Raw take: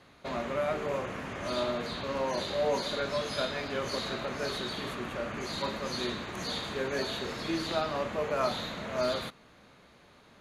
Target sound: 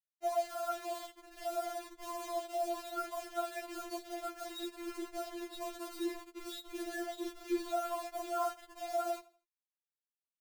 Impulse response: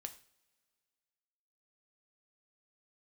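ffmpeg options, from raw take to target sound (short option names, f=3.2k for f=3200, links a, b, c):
-filter_complex "[0:a]acrossover=split=4800[a][b];[b]acompressor=threshold=-55dB:ratio=4:attack=1:release=60[c];[a][c]amix=inputs=2:normalize=0,afftfilt=real='re*gte(hypot(re,im),0.0631)':imag='im*gte(hypot(re,im),0.0631)':win_size=1024:overlap=0.75,afftdn=nr=32:nf=-55,acrossover=split=490 2500:gain=0.0708 1 0.126[d][e][f];[d][e][f]amix=inputs=3:normalize=0,aecho=1:1:1.6:0.62,asubboost=boost=9.5:cutoff=240,acompressor=threshold=-46dB:ratio=2.5,afftfilt=real='hypot(re,im)*cos(2*PI*random(0))':imag='hypot(re,im)*sin(2*PI*random(1))':win_size=512:overlap=0.75,acrusher=bits=9:mix=0:aa=0.000001,aecho=1:1:81|162|243:0.0944|0.033|0.0116,afftfilt=real='re*4*eq(mod(b,16),0)':imag='im*4*eq(mod(b,16),0)':win_size=2048:overlap=0.75,volume=16.5dB"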